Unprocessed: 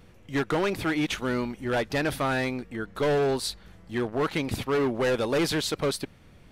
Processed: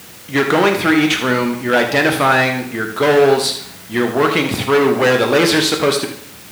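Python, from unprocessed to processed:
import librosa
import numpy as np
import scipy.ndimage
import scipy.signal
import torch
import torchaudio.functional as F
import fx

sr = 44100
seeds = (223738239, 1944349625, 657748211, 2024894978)

p1 = x + 10.0 ** (-11.5 / 20.0) * np.pad(x, (int(79 * sr / 1000.0), 0))[:len(x)]
p2 = fx.rev_plate(p1, sr, seeds[0], rt60_s=0.68, hf_ratio=0.85, predelay_ms=0, drr_db=4.5)
p3 = fx.quant_dither(p2, sr, seeds[1], bits=6, dither='triangular')
p4 = p2 + (p3 * 10.0 ** (-11.5 / 20.0))
p5 = scipy.signal.sosfilt(scipy.signal.butter(2, 120.0, 'highpass', fs=sr, output='sos'), p4)
p6 = fx.peak_eq(p5, sr, hz=2000.0, db=4.0, octaves=2.3)
y = p6 * 10.0 ** (7.5 / 20.0)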